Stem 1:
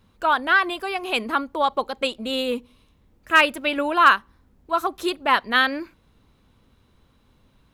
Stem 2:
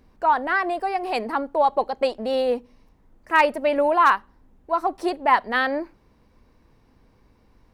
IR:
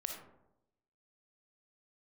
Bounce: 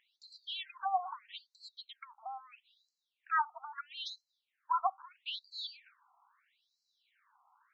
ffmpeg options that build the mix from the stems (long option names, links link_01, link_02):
-filter_complex "[0:a]volume=0dB[link_01];[1:a]volume=-0.5dB[link_02];[link_01][link_02]amix=inputs=2:normalize=0,highshelf=frequency=3100:gain=-9,acrossover=split=290|3000[link_03][link_04][link_05];[link_04]acompressor=threshold=-27dB:ratio=6[link_06];[link_03][link_06][link_05]amix=inputs=3:normalize=0,afftfilt=real='re*between(b*sr/1024,960*pow(5700/960,0.5+0.5*sin(2*PI*0.77*pts/sr))/1.41,960*pow(5700/960,0.5+0.5*sin(2*PI*0.77*pts/sr))*1.41)':imag='im*between(b*sr/1024,960*pow(5700/960,0.5+0.5*sin(2*PI*0.77*pts/sr))/1.41,960*pow(5700/960,0.5+0.5*sin(2*PI*0.77*pts/sr))*1.41)':win_size=1024:overlap=0.75"